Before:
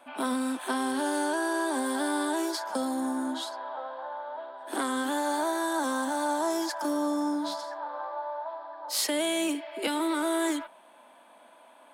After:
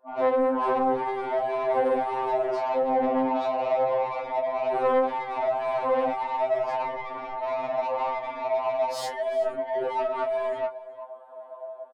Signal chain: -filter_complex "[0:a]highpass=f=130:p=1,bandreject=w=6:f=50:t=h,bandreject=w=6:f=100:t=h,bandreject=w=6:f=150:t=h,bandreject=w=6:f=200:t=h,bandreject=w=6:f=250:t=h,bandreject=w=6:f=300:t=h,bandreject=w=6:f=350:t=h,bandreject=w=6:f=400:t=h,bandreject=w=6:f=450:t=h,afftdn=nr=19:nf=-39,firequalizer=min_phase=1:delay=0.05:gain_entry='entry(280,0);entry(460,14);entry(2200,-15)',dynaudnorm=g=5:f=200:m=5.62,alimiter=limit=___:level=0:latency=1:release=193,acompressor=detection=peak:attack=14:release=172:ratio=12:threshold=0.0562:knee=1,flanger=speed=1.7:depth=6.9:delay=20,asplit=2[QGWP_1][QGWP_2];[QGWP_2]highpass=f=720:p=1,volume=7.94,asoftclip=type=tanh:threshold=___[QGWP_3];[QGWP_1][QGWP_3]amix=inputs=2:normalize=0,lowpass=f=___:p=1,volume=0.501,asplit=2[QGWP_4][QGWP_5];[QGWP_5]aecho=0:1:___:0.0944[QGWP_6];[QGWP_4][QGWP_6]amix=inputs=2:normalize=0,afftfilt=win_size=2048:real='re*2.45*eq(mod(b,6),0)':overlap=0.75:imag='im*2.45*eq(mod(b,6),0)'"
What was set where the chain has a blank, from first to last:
0.282, 0.126, 2900, 371